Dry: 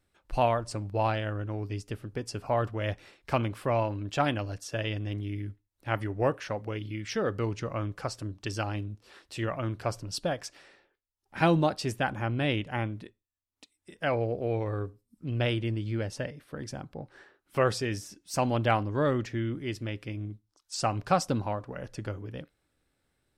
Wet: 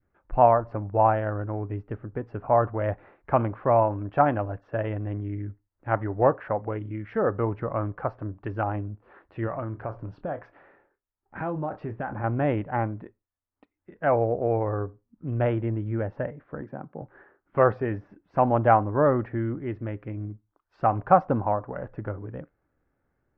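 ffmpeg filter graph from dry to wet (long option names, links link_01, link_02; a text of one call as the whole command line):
ffmpeg -i in.wav -filter_complex "[0:a]asettb=1/sr,asplit=3[link_01][link_02][link_03];[link_01]atrim=end=9.474[link_04];[link_02]atrim=start=9.47:end=12.24,asetpts=PTS-STARTPTS,afade=type=in:duration=0.004:curve=qsin,afade=type=out:start_time=2.766:duration=0.004:curve=qsin,asplit=2[link_05][link_06];[link_06]adelay=27,volume=-12.5dB[link_07];[link_05][link_07]amix=inputs=2:normalize=0,atrim=end_sample=122157,acompressor=threshold=-31dB:ratio=5:attack=3.2:release=140:knee=1:detection=peak[link_08];[link_03]atrim=start=12.236[link_09];[link_04][link_08]acrossfade=duration=0.004:curve1=hsin:curve2=qsin[link_10];[link_10][link_09]acrossfade=duration=0.004:curve1=qsin:curve2=hsin,asettb=1/sr,asplit=3[link_11][link_12][link_13];[link_11]atrim=end=16.614[link_14];[link_12]atrim=start=16.61:end=17.02,asetpts=PTS-STARTPTS,afade=type=in:duration=0.004:curve=qsin,afade=type=out:start_time=0.406:duration=0.004:curve=qsin,highpass=frequency=140:width=0.5412,highpass=frequency=140:width=1.3066,highshelf=frequency=3900:gain=-12[link_15];[link_13]atrim=start=17.016[link_16];[link_14][link_15]acrossfade=duration=0.004:curve1=hsin:curve2=qsin[link_17];[link_17][link_16]acrossfade=duration=0.004:curve1=qsin:curve2=hsin,lowpass=frequency=1700:width=0.5412,lowpass=frequency=1700:width=1.3066,adynamicequalizer=threshold=0.01:dfrequency=780:dqfactor=1.1:tfrequency=780:tqfactor=1.1:attack=5:release=100:ratio=0.375:range=3.5:mode=boostabove:tftype=bell,volume=2.5dB" out.wav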